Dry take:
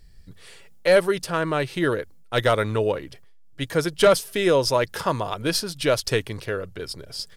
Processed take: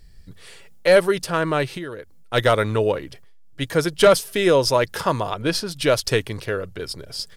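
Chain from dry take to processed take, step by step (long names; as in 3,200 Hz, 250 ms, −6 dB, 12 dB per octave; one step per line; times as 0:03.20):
0:01.70–0:02.34: downward compressor 8 to 1, threshold −32 dBFS, peak gain reduction 14 dB
0:05.31–0:05.71: high-shelf EQ 6,200 Hz −8.5 dB
level +2.5 dB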